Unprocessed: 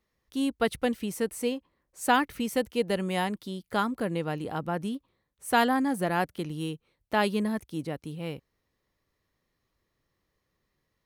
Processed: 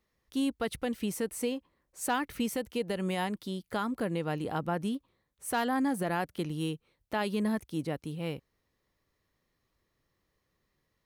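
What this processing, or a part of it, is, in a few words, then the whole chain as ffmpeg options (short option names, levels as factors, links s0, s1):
clipper into limiter: -af "asoftclip=type=hard:threshold=0.211,alimiter=limit=0.0891:level=0:latency=1:release=121"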